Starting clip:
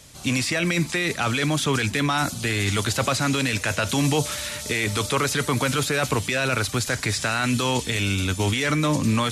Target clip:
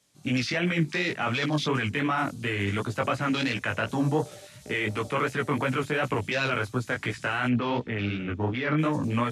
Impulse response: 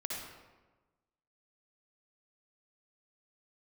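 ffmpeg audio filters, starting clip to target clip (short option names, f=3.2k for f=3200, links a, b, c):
-filter_complex "[0:a]highpass=120,afwtdn=0.0355,asplit=3[a][b][c];[a]afade=t=out:st=7.47:d=0.02[d];[b]lowpass=2.3k,afade=t=in:st=7.47:d=0.02,afade=t=out:st=8.77:d=0.02[e];[c]afade=t=in:st=8.77:d=0.02[f];[d][e][f]amix=inputs=3:normalize=0,flanger=delay=15.5:depth=4.9:speed=2.8"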